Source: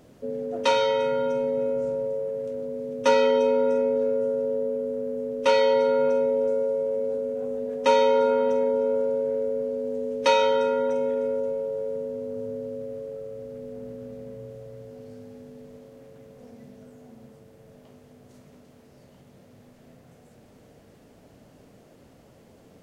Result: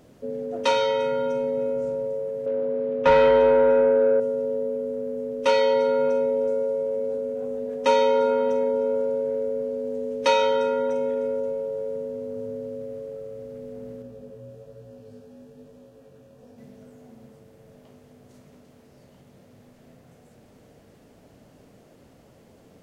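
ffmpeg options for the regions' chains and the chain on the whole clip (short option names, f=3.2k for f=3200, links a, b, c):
-filter_complex "[0:a]asettb=1/sr,asplit=3[a][b][c];[a]atrim=end=2.464[d];[b]atrim=start=2.46:end=4.2,asetpts=PTS-STARTPTS,afade=t=in:d=0.004:c=qsin,afade=t=out:st=1.736:d=0.004:c=qsin,lowpass=3.1k,asplit=2[e][f];[f]highpass=f=720:p=1,volume=17dB,asoftclip=type=tanh:threshold=-7.5dB[g];[e][g]amix=inputs=2:normalize=0,lowpass=f=1.6k:p=1,volume=-6dB[h];[c]atrim=start=4.196[i];[d][h]acrossfade=d=0.004:c1=hsin:c2=qsin[j];[j][i]acrossfade=d=0.004:c1=qsin:c2=hsin,asettb=1/sr,asplit=3[k][l][m];[k]atrim=end=14.024[n];[l]atrim=start=14.02:end=16.58,asetpts=PTS-STARTPTS,afade=t=in:d=0.004:c=qsin,afade=t=out:st=2.556:d=0.004:c=qsin,flanger=delay=16.5:depth=7.3:speed=1.1,asuperstop=centerf=2100:order=4:qfactor=6.4[o];[m]atrim=start=16.576[p];[n][o]acrossfade=d=0.004:c1=hsin:c2=qsin[q];[q][p]acrossfade=d=0.004:c1=qsin:c2=hsin"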